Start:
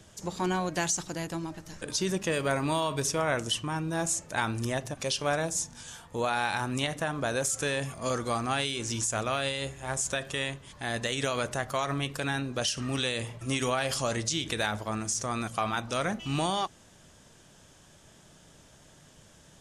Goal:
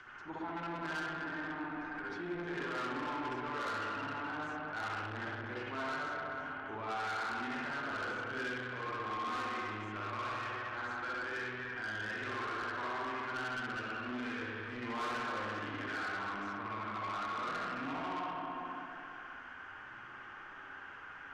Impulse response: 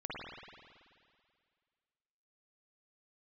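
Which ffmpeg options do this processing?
-filter_complex "[0:a]flanger=delay=7.2:depth=4.3:regen=31:speed=0.65:shape=triangular,acrossover=split=890[a][b];[b]acompressor=mode=upward:threshold=-40dB:ratio=2.5[c];[a][c]amix=inputs=2:normalize=0,lowpass=f=1.7k:t=q:w=2.2,equalizer=f=600:w=2.1:g=-11.5,asetrate=40517,aresample=44100[d];[1:a]atrim=start_sample=2205,asetrate=37044,aresample=44100[e];[d][e]afir=irnorm=-1:irlink=0,asoftclip=type=tanh:threshold=-31.5dB,alimiter=level_in=11.5dB:limit=-24dB:level=0:latency=1,volume=-11.5dB,lowshelf=f=230:t=q:w=1.5:g=-8,bandreject=f=60:t=h:w=6,bandreject=f=120:t=h:w=6,volume=1dB"

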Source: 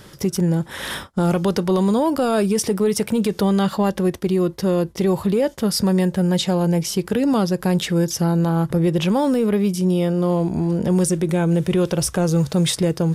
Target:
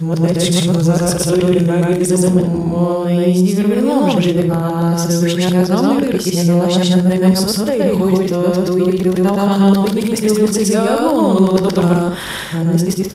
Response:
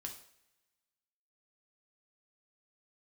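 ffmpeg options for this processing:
-filter_complex "[0:a]areverse,aecho=1:1:122.4|177.8:1|0.501,asplit=2[a][b];[1:a]atrim=start_sample=2205[c];[b][c]afir=irnorm=-1:irlink=0,volume=-0.5dB[d];[a][d]amix=inputs=2:normalize=0,volume=-2dB"

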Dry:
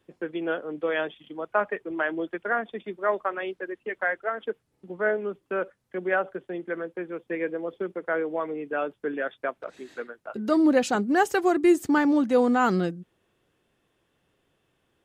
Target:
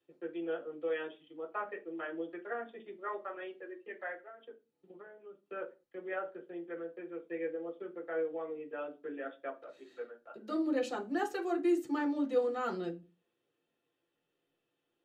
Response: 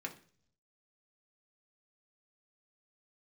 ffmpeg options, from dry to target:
-filter_complex "[0:a]asplit=3[a][b][c];[a]afade=t=out:st=4.2:d=0.02[d];[b]acompressor=threshold=-35dB:ratio=12,afade=t=in:st=4.2:d=0.02,afade=t=out:st=5.43:d=0.02[e];[c]afade=t=in:st=5.43:d=0.02[f];[d][e][f]amix=inputs=3:normalize=0[g];[1:a]atrim=start_sample=2205,afade=t=out:st=0.42:d=0.01,atrim=end_sample=18963,asetrate=74970,aresample=44100[h];[g][h]afir=irnorm=-1:irlink=0,volume=-7dB"

